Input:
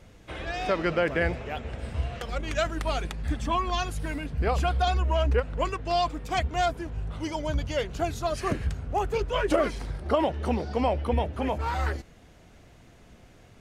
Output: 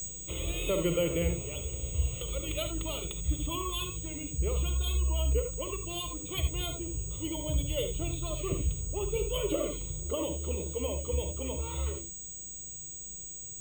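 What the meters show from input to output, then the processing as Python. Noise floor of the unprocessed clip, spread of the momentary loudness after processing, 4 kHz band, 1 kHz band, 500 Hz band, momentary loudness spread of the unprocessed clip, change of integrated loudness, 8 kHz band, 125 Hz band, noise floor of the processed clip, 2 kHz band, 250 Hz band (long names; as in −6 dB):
−54 dBFS, 9 LU, −1.5 dB, −16.0 dB, −6.0 dB, 9 LU, −5.0 dB, +12.0 dB, −2.5 dB, −43 dBFS, −11.0 dB, −5.0 dB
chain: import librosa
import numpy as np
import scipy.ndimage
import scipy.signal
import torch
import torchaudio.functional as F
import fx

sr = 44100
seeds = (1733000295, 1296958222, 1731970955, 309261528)

y = fx.curve_eq(x, sr, hz=(110.0, 180.0, 300.0, 630.0, 920.0, 1800.0, 3500.0, 5100.0, 11000.0), db=(0, 9, -1, -5, -12, -14, 4, -14, -23))
y = fx.rider(y, sr, range_db=10, speed_s=2.0)
y = y + 10.0 ** (-29.0 / 20.0) * np.sin(2.0 * np.pi * 8000.0 * np.arange(len(y)) / sr)
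y = fx.fixed_phaser(y, sr, hz=1100.0, stages=8)
y = fx.rev_gated(y, sr, seeds[0], gate_ms=100, shape='rising', drr_db=6.0)
y = np.repeat(y[::3], 3)[:len(y)]
y = y * 10.0 ** (-1.5 / 20.0)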